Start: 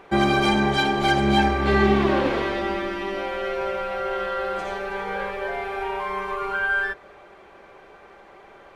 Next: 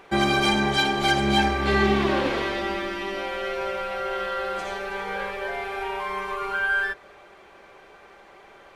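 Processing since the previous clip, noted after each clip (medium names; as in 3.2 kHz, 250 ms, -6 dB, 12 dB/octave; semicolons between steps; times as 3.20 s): treble shelf 2.2 kHz +7.5 dB; trim -3 dB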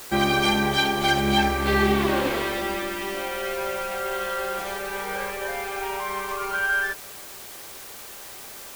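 added noise white -41 dBFS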